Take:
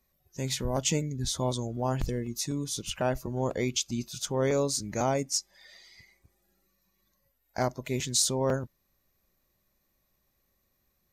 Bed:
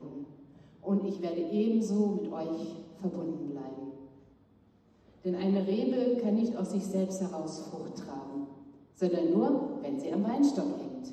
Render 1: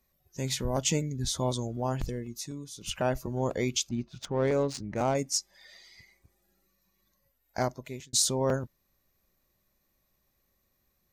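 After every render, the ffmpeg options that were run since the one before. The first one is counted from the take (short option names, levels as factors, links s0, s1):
-filter_complex "[0:a]asettb=1/sr,asplit=3[s0][s1][s2];[s0]atrim=end=3.894[s3];[s1]atrim=start=3.89:end=5.15,asetpts=PTS-STARTPTS,afade=t=in:d=0.004:c=qsin,afade=t=out:st=1.256:d=0.004:c=qsin,adynamicsmooth=sensitivity=3.5:basefreq=1600[s4];[s2]atrim=start=5.146[s5];[s3][s4]acrossfade=d=0.004:c1=hsin:c2=qsin[s6];[s6][s5]acrossfade=d=0.004:c1=qsin:c2=hsin,asplit=3[s7][s8][s9];[s7]atrim=end=2.81,asetpts=PTS-STARTPTS,afade=t=out:st=1.65:d=1.16:silence=0.251189[s10];[s8]atrim=start=2.81:end=8.13,asetpts=PTS-STARTPTS,afade=t=in:d=0.004:c=hsin:silence=0.251189,afade=t=out:st=4.78:d=0.54[s11];[s9]atrim=start=8.13,asetpts=PTS-STARTPTS,afade=t=in:d=0.004:c=hsin[s12];[s10][s11][s12]concat=n=3:v=0:a=1"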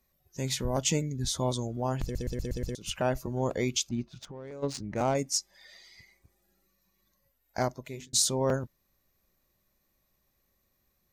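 -filter_complex "[0:a]asplit=3[s0][s1][s2];[s0]afade=t=out:st=4.12:d=0.02[s3];[s1]acompressor=threshold=0.00891:ratio=5:attack=3.2:release=140:knee=1:detection=peak,afade=t=in:st=4.12:d=0.02,afade=t=out:st=4.62:d=0.02[s4];[s2]afade=t=in:st=4.62:d=0.02[s5];[s3][s4][s5]amix=inputs=3:normalize=0,asettb=1/sr,asplit=3[s6][s7][s8];[s6]atrim=end=7.914[s9];[s7]atrim=start=7.91:end=8.33,asetpts=PTS-STARTPTS,afade=t=in:d=0.004:c=qsin,afade=t=out:st=0.416:d=0.004:c=qsin,bandreject=f=50:t=h:w=6,bandreject=f=100:t=h:w=6,bandreject=f=150:t=h:w=6,bandreject=f=200:t=h:w=6,bandreject=f=250:t=h:w=6,bandreject=f=300:t=h:w=6,bandreject=f=350:t=h:w=6,bandreject=f=400:t=h:w=6,bandreject=f=450:t=h:w=6[s10];[s8]atrim=start=8.326[s11];[s9][s10]acrossfade=d=0.004:c1=hsin:c2=qsin[s12];[s12][s11]acrossfade=d=0.004:c1=qsin:c2=hsin,asplit=7[s13][s14][s15][s16][s17][s18][s19];[s13]atrim=end=2.152[s20];[s14]atrim=start=2.028:end=2.152[s21];[s15]atrim=start=2.028:end=2.152[s22];[s16]atrim=start=2.028:end=2.152[s23];[s17]atrim=start=2.028:end=2.152[s24];[s18]atrim=start=2.028:end=2.152[s25];[s19]atrim=start=2.748[s26];[s20][s21]acrossfade=d=0.004:c1=hsin:c2=hsin[s27];[s27][s22]acrossfade=d=0.004:c1=hsin:c2=hsin[s28];[s28][s23]acrossfade=d=0.004:c1=hsin:c2=hsin[s29];[s29][s24]acrossfade=d=0.004:c1=hsin:c2=hsin[s30];[s30][s25]acrossfade=d=0.004:c1=hsin:c2=hsin[s31];[s31][s26]acrossfade=d=0.004:c1=hsin:c2=hsin"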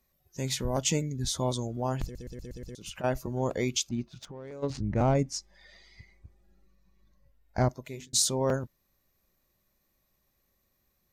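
-filter_complex "[0:a]asettb=1/sr,asplit=3[s0][s1][s2];[s0]atrim=end=2.074[s3];[s1]atrim=start=2.07:end=3.04,asetpts=PTS-STARTPTS,afade=t=in:d=0.004:c=qsin,afade=t=out:st=0.966:d=0.004:c=qsin,acompressor=threshold=0.0141:ratio=6:attack=3.2:release=140:knee=1:detection=peak[s4];[s2]atrim=start=3.036[s5];[s3][s4]acrossfade=d=0.004:c1=hsin:c2=qsin[s6];[s6][s5]acrossfade=d=0.004:c1=qsin:c2=hsin,asettb=1/sr,asplit=3[s7][s8][s9];[s7]atrim=end=4.704[s10];[s8]atrim=start=4.7:end=7.69,asetpts=PTS-STARTPTS,afade=t=in:d=0.004:c=qsin,afade=t=out:st=2.986:d=0.004:c=qsin,aemphasis=mode=reproduction:type=bsi[s11];[s9]atrim=start=7.686[s12];[s10][s11]acrossfade=d=0.004:c1=hsin:c2=qsin[s13];[s13][s12]acrossfade=d=0.004:c1=qsin:c2=hsin"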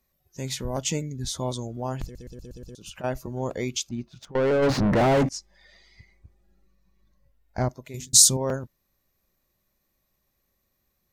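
-filter_complex "[0:a]asettb=1/sr,asplit=3[s0][s1][s2];[s0]atrim=end=2.314[s3];[s1]atrim=start=2.31:end=2.94,asetpts=PTS-STARTPTS,afade=t=in:d=0.004:c=qsin,afade=t=out:st=0.626:d=0.004:c=qsin,asuperstop=centerf=2000:order=4:qfactor=3[s4];[s2]atrim=start=2.936[s5];[s3][s4]acrossfade=d=0.004:c1=hsin:c2=qsin[s6];[s6][s5]acrossfade=d=0.004:c1=qsin:c2=hsin,asettb=1/sr,asplit=3[s7][s8][s9];[s7]atrim=end=4.354[s10];[s8]atrim=start=4.35:end=5.29,asetpts=PTS-STARTPTS,afade=t=in:d=0.004:c=qsin,afade=t=out:st=0.936:d=0.004:c=qsin,asplit=2[s11][s12];[s12]highpass=f=720:p=1,volume=100,asoftclip=type=tanh:threshold=0.224[s13];[s11][s13]amix=inputs=2:normalize=0,lowpass=f=1500:p=1,volume=0.501[s14];[s9]atrim=start=5.286[s15];[s10][s14]acrossfade=d=0.004:c1=hsin:c2=qsin[s16];[s16][s15]acrossfade=d=0.004:c1=qsin:c2=hsin,asettb=1/sr,asplit=3[s17][s18][s19];[s17]atrim=end=7.944[s20];[s18]atrim=start=7.94:end=8.37,asetpts=PTS-STARTPTS,afade=t=in:d=0.004:c=qsin,afade=t=out:st=0.426:d=0.004:c=qsin,bass=f=250:g=10,treble=f=4000:g=13[s21];[s19]atrim=start=8.366[s22];[s20][s21]acrossfade=d=0.004:c1=hsin:c2=qsin[s23];[s23][s22]acrossfade=d=0.004:c1=qsin:c2=hsin"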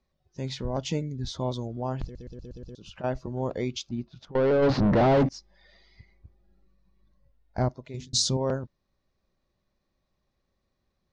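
-af "lowpass=f=4800:w=0.5412,lowpass=f=4800:w=1.3066,equalizer=f=2300:w=0.91:g=-5"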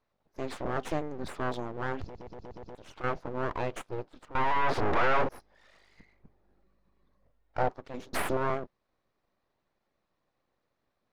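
-filter_complex "[0:a]aeval=exprs='abs(val(0))':c=same,asplit=2[s0][s1];[s1]highpass=f=720:p=1,volume=3.98,asoftclip=type=tanh:threshold=0.237[s2];[s0][s2]amix=inputs=2:normalize=0,lowpass=f=1200:p=1,volume=0.501"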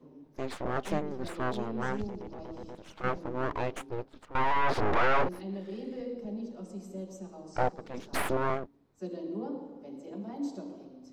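-filter_complex "[1:a]volume=0.316[s0];[0:a][s0]amix=inputs=2:normalize=0"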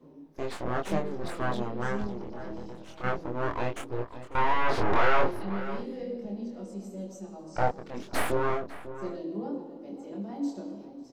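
-filter_complex "[0:a]asplit=2[s0][s1];[s1]adelay=25,volume=0.708[s2];[s0][s2]amix=inputs=2:normalize=0,asplit=2[s3][s4];[s4]adelay=548.1,volume=0.224,highshelf=f=4000:g=-12.3[s5];[s3][s5]amix=inputs=2:normalize=0"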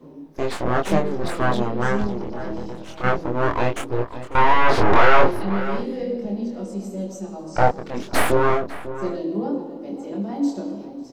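-af "volume=2.99,alimiter=limit=0.708:level=0:latency=1"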